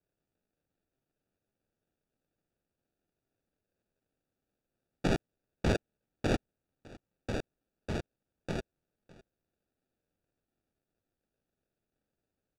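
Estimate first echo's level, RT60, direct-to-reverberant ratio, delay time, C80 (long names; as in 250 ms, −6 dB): −22.0 dB, no reverb audible, no reverb audible, 607 ms, no reverb audible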